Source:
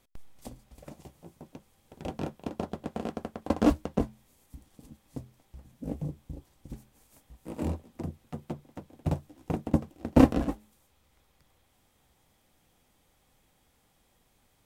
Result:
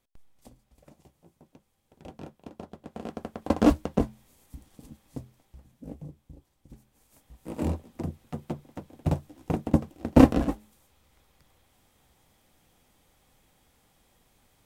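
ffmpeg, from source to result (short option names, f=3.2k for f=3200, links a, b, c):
-af "volume=13.5dB,afade=t=in:st=2.83:d=0.7:silence=0.266073,afade=t=out:st=4.87:d=1.12:silence=0.298538,afade=t=in:st=6.73:d=0.87:silence=0.298538"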